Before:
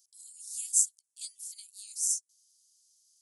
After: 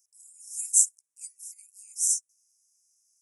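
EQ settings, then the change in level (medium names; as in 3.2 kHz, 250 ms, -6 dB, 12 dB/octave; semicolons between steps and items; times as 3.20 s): elliptic band-stop 2.5–5.3 kHz, stop band 40 dB; dynamic bell 8.5 kHz, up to +7 dB, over -42 dBFS, Q 0.78; -1.0 dB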